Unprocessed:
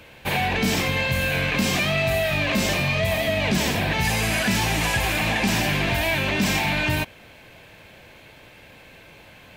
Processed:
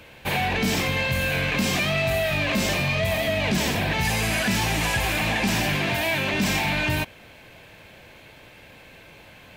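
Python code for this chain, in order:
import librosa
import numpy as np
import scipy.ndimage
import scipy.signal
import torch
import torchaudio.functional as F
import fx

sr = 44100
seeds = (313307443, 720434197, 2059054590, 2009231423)

p1 = fx.highpass(x, sr, hz=110.0, slope=12, at=(5.76, 6.34))
p2 = np.clip(p1, -10.0 ** (-23.5 / 20.0), 10.0 ** (-23.5 / 20.0))
p3 = p1 + (p2 * 10.0 ** (-8.5 / 20.0))
y = p3 * 10.0 ** (-3.0 / 20.0)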